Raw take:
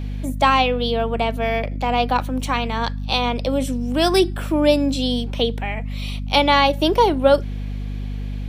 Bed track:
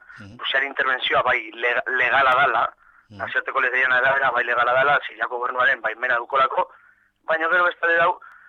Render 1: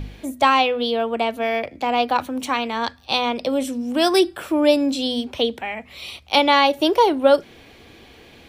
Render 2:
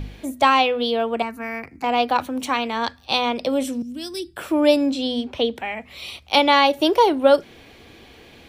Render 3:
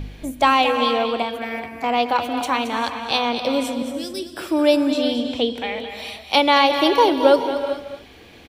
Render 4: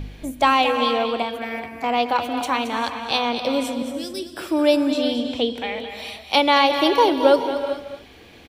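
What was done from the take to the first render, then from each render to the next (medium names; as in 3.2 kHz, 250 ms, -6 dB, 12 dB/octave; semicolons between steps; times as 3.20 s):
de-hum 50 Hz, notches 5
1.22–1.84 s: static phaser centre 1.4 kHz, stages 4; 3.82–4.37 s: FFT filter 170 Hz 0 dB, 800 Hz -29 dB, 1.8 kHz -19 dB, 5 kHz -8 dB; 4.89–5.56 s: low-pass 3.7 kHz 6 dB/octave
delay 222 ms -10 dB; gated-style reverb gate 460 ms rising, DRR 8.5 dB
trim -1 dB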